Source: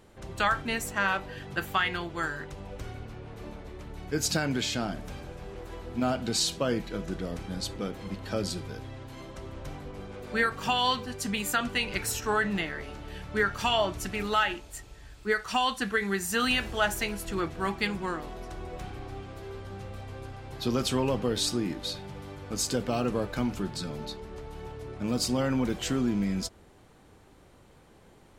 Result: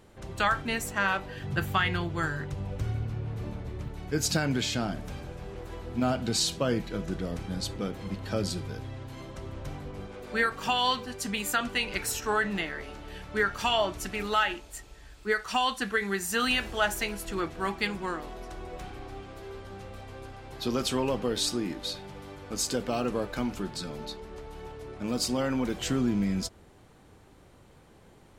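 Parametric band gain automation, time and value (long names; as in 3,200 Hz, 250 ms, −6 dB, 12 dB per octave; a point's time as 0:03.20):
parametric band 110 Hz 1.5 octaves
+1.5 dB
from 0:01.43 +12.5 dB
from 0:03.88 +3.5 dB
from 0:10.07 −5.5 dB
from 0:25.77 +2 dB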